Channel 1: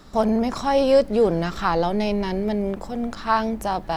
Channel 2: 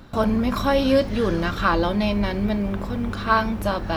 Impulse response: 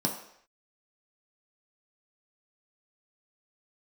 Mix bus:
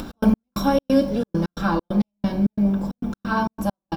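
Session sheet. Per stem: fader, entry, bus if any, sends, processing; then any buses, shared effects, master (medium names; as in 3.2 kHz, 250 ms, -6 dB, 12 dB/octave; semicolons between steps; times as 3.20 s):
-7.0 dB, 0.00 s, no send, compression, threshold -19 dBFS, peak gain reduction 8 dB
+2.0 dB, 0.4 ms, polarity flipped, send -16 dB, treble shelf 10 kHz +11 dB; auto duck -16 dB, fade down 1.25 s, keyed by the first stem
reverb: on, pre-delay 3 ms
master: trance gate "x.x..xx.xxx.x.x" 134 bpm -60 dB; upward compressor, threshold -25 dBFS; peaking EQ 1.9 kHz -8 dB 0.27 oct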